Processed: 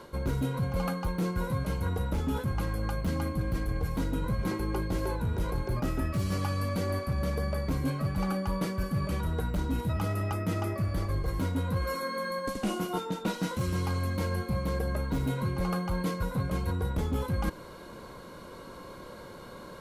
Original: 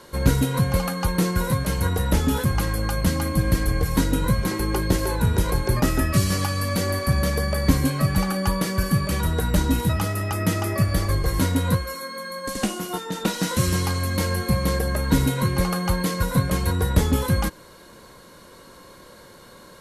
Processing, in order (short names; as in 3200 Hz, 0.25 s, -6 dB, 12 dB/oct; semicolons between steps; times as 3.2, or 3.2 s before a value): hard clip -14 dBFS, distortion -17 dB; bell 9000 Hz -10 dB 2.6 oct; notch 1800 Hz, Q 8.5; reverse; compressor 6:1, threshold -30 dBFS, peak gain reduction 13 dB; reverse; gain +2.5 dB